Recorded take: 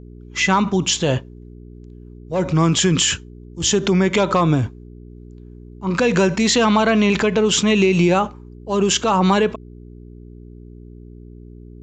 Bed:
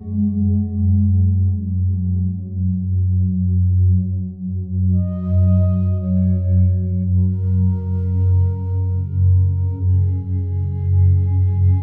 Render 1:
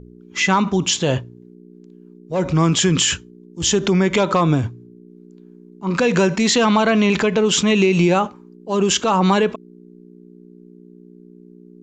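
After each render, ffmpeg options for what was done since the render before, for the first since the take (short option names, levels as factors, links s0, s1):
-af "bandreject=f=60:t=h:w=4,bandreject=f=120:t=h:w=4"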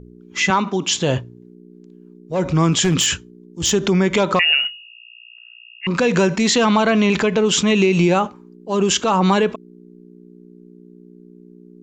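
-filter_complex "[0:a]asettb=1/sr,asplit=3[s0][s1][s2];[s0]atrim=end=0.504[s3];[s1]atrim=start=0.5:end=0.91,asetpts=PTS-STARTPTS,afade=t=in:d=0.004:c=qsin,afade=t=out:st=0.406:d=0.004:c=qsin,highpass=230,lowpass=6500[s4];[s2]atrim=start=0.906[s5];[s3][s4]acrossfade=d=0.004:c1=hsin:c2=qsin[s6];[s6][s5]acrossfade=d=0.004:c1=qsin:c2=hsin,asettb=1/sr,asplit=3[s7][s8][s9];[s7]atrim=end=2.844[s10];[s8]atrim=start=2.84:end=3.72,asetpts=PTS-STARTPTS,afade=t=in:d=0.004:c=qsin,afade=t=out:st=0.876:d=0.004:c=qsin,aeval=exprs='0.316*(abs(mod(val(0)/0.316+3,4)-2)-1)':c=same[s11];[s9]atrim=start=3.716[s12];[s10][s11]acrossfade=d=0.004:c1=hsin:c2=qsin[s13];[s13][s12]acrossfade=d=0.004:c1=qsin:c2=hsin,asettb=1/sr,asplit=3[s14][s15][s16];[s14]atrim=end=4.394[s17];[s15]atrim=start=4.39:end=5.87,asetpts=PTS-STARTPTS,afade=t=in:d=0.004:c=qsin,afade=t=out:st=1.476:d=0.004:c=qsin,lowpass=f=2600:t=q:w=0.5098,lowpass=f=2600:t=q:w=0.6013,lowpass=f=2600:t=q:w=0.9,lowpass=f=2600:t=q:w=2.563,afreqshift=-3000[s18];[s16]atrim=start=5.866[s19];[s17][s18]acrossfade=d=0.004:c1=hsin:c2=qsin[s20];[s20][s19]acrossfade=d=0.004:c1=qsin:c2=hsin"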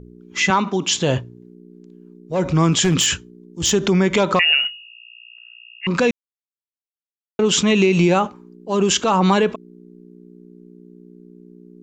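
-filter_complex "[0:a]asplit=3[s0][s1][s2];[s0]atrim=end=6.11,asetpts=PTS-STARTPTS,afade=t=out:st=6.106:d=0.004:c=hsin[s3];[s1]atrim=start=6.11:end=7.39,asetpts=PTS-STARTPTS,volume=0[s4];[s2]atrim=start=7.39,asetpts=PTS-STARTPTS,afade=t=in:d=0.004:c=hsin[s5];[s3][s4][s5]concat=n=3:v=0:a=1"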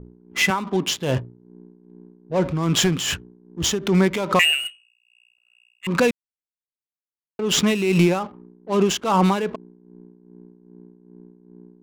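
-af "adynamicsmooth=sensitivity=4.5:basefreq=650,tremolo=f=2.5:d=0.64"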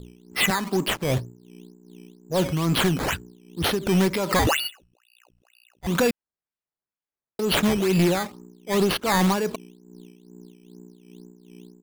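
-af "aresample=16000,asoftclip=type=tanh:threshold=0.2,aresample=44100,acrusher=samples=11:mix=1:aa=0.000001:lfo=1:lforange=11:lforate=2.1"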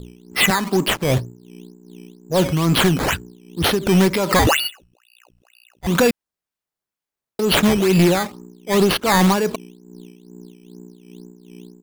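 -af "volume=1.88"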